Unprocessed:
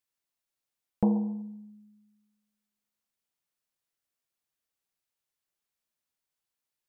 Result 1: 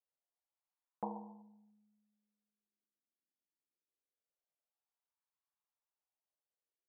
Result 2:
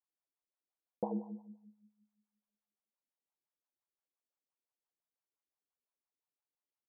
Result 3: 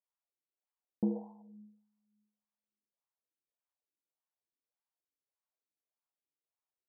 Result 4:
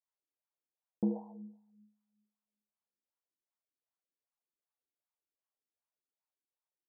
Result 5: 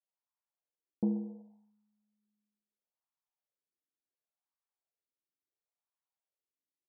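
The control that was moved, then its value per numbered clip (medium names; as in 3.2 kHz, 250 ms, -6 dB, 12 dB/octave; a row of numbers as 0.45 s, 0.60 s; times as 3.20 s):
wah-wah, rate: 0.23 Hz, 5.8 Hz, 1.7 Hz, 2.6 Hz, 0.71 Hz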